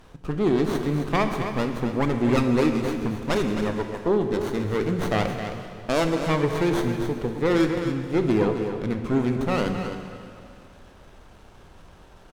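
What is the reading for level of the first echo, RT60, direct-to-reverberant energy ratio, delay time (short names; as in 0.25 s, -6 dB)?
-9.0 dB, 2.5 s, 4.0 dB, 0.265 s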